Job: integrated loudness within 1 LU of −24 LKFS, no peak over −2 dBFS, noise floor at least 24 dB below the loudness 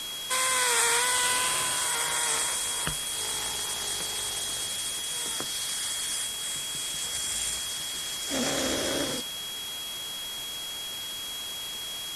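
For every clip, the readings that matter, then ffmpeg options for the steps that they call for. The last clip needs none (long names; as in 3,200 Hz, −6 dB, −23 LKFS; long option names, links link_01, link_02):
interfering tone 3,300 Hz; level of the tone −35 dBFS; background noise floor −36 dBFS; target noise floor −52 dBFS; integrated loudness −27.5 LKFS; sample peak −10.5 dBFS; target loudness −24.0 LKFS
→ -af "bandreject=frequency=3300:width=30"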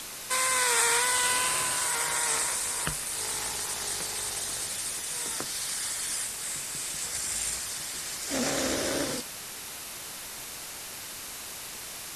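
interfering tone none found; background noise floor −40 dBFS; target noise floor −53 dBFS
→ -af "afftdn=noise_reduction=13:noise_floor=-40"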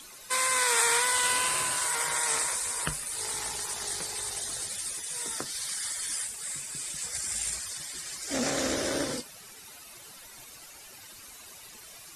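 background noise floor −49 dBFS; target noise floor −53 dBFS
→ -af "afftdn=noise_reduction=6:noise_floor=-49"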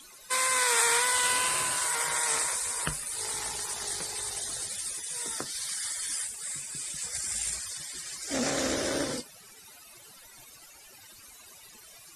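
background noise floor −52 dBFS; target noise floor −53 dBFS
→ -af "afftdn=noise_reduction=6:noise_floor=-52"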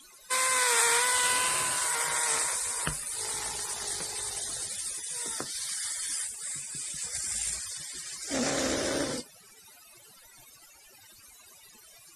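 background noise floor −55 dBFS; integrated loudness −28.5 LKFS; sample peak −11.0 dBFS; target loudness −24.0 LKFS
→ -af "volume=4.5dB"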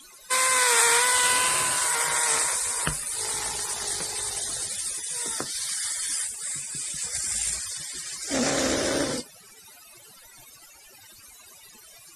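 integrated loudness −24.0 LKFS; sample peak −6.5 dBFS; background noise floor −51 dBFS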